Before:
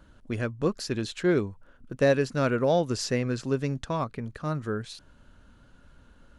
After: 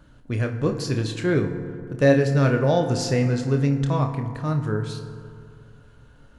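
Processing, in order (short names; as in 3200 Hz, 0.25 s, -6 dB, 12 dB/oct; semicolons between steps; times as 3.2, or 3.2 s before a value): bell 130 Hz +12 dB 0.31 oct; flutter echo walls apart 4.9 m, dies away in 0.2 s; FDN reverb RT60 2.4 s, low-frequency decay 1×, high-frequency decay 0.4×, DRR 7 dB; gain +1.5 dB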